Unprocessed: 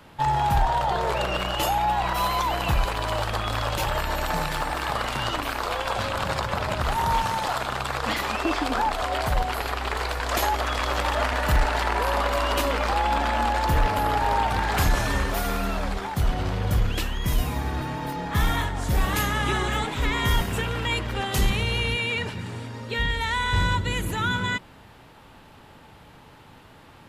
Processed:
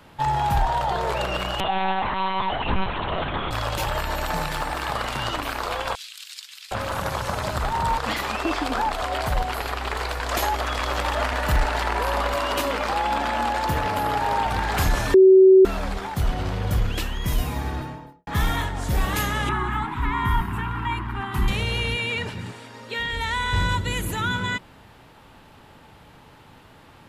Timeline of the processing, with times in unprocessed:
1.60–3.51 s: monotone LPC vocoder at 8 kHz 190 Hz
5.95–7.98 s: bands offset in time highs, lows 760 ms, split 2.9 kHz
12.34–14.46 s: high-pass 84 Hz
15.14–15.65 s: bleep 379 Hz -8 dBFS
17.66–18.27 s: studio fade out
19.49–21.48 s: FFT filter 360 Hz 0 dB, 530 Hz -26 dB, 950 Hz +7 dB, 6.3 kHz -19 dB, 11 kHz -10 dB
22.51–23.12 s: high-pass 640 Hz -> 290 Hz 6 dB/octave
23.69–24.21 s: treble shelf 8.1 kHz +6.5 dB

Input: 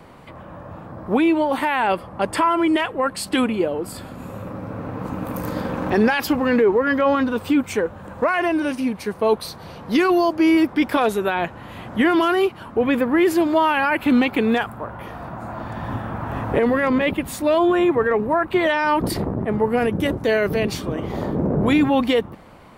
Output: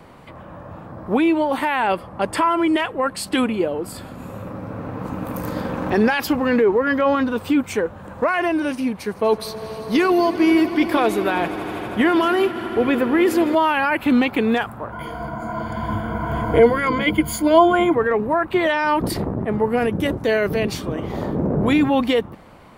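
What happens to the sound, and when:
8.98–13.55 s: echo with a slow build-up 80 ms, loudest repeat 5, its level -18 dB
14.92–17.94 s: rippled EQ curve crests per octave 1.8, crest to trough 17 dB

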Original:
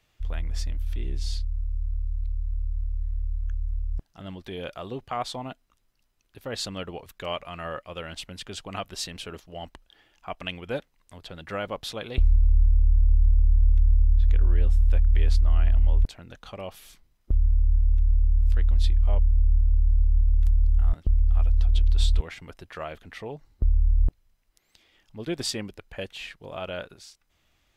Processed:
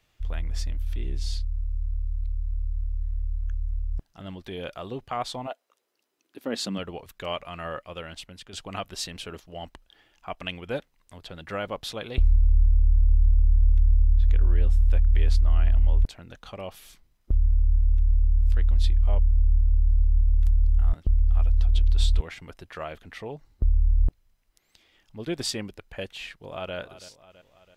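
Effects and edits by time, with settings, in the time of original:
5.46–6.77 s: resonant high-pass 600 Hz -> 200 Hz, resonance Q 3.1
7.84–8.53 s: fade out, to -8 dB
26.33–26.75 s: echo throw 330 ms, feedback 60%, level -15 dB

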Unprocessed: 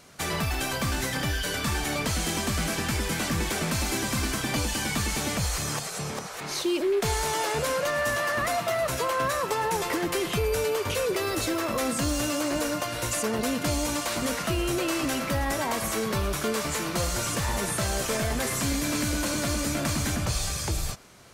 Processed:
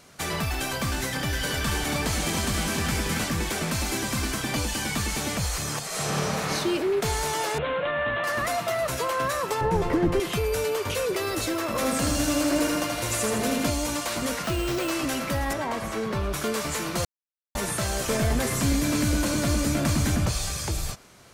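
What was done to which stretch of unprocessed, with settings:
1.05–3.24 s: delay 277 ms -4.5 dB
5.86–6.49 s: reverb throw, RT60 2.6 s, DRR -7.5 dB
7.58–8.24 s: steep low-pass 3.7 kHz 96 dB/octave
9.61–10.20 s: tilt EQ -4 dB/octave
11.67–13.70 s: feedback delay 80 ms, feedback 60%, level -3.5 dB
14.44–14.91 s: careless resampling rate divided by 4×, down none, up hold
15.53–16.34 s: low-pass 2.4 kHz 6 dB/octave
17.05–17.55 s: mute
18.07–20.29 s: bass shelf 440 Hz +6 dB

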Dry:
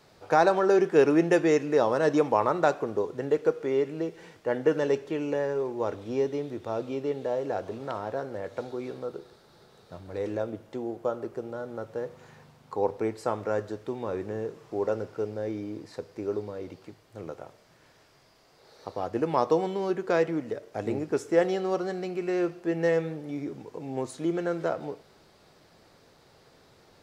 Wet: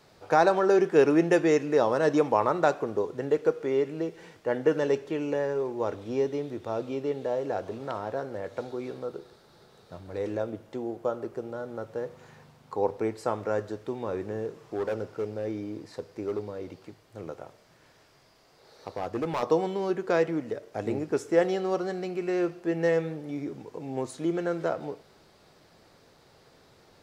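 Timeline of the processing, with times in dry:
14.27–19.43 s: hard clipper -25 dBFS

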